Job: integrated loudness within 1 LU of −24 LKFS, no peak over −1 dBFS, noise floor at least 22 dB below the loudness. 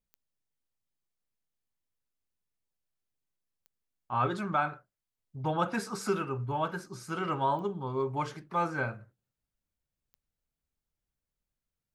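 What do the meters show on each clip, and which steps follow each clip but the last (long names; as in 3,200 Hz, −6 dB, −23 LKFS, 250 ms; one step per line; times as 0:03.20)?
number of clicks 4; integrated loudness −32.5 LKFS; sample peak −16.5 dBFS; target loudness −24.0 LKFS
→ click removal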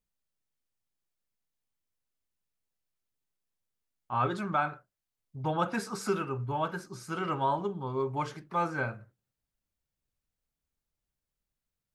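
number of clicks 0; integrated loudness −32.5 LKFS; sample peak −16.5 dBFS; target loudness −24.0 LKFS
→ level +8.5 dB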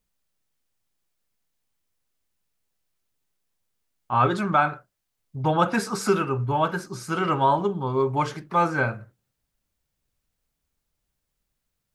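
integrated loudness −24.0 LKFS; sample peak −8.0 dBFS; background noise floor −80 dBFS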